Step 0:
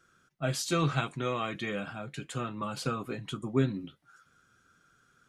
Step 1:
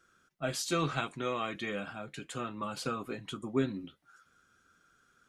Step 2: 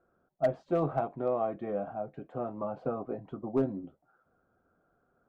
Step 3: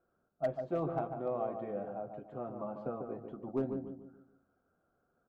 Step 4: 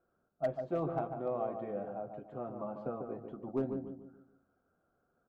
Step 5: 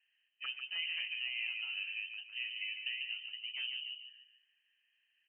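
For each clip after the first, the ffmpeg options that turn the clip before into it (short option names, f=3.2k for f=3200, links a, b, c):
-af "equalizer=f=130:w=2:g=-7.5,volume=-1.5dB"
-af "lowpass=f=700:t=q:w=3.8,volume=19dB,asoftclip=hard,volume=-19dB"
-filter_complex "[0:a]asplit=2[a][b];[b]adelay=146,lowpass=f=1.2k:p=1,volume=-5.5dB,asplit=2[c][d];[d]adelay=146,lowpass=f=1.2k:p=1,volume=0.41,asplit=2[e][f];[f]adelay=146,lowpass=f=1.2k:p=1,volume=0.41,asplit=2[g][h];[h]adelay=146,lowpass=f=1.2k:p=1,volume=0.41,asplit=2[i][j];[j]adelay=146,lowpass=f=1.2k:p=1,volume=0.41[k];[a][c][e][g][i][k]amix=inputs=6:normalize=0,volume=-6dB"
-af anull
-af "lowpass=f=2.7k:t=q:w=0.5098,lowpass=f=2.7k:t=q:w=0.6013,lowpass=f=2.7k:t=q:w=0.9,lowpass=f=2.7k:t=q:w=2.563,afreqshift=-3200,afftfilt=real='re*lt(hypot(re,im),0.126)':imag='im*lt(hypot(re,im),0.126)':win_size=1024:overlap=0.75"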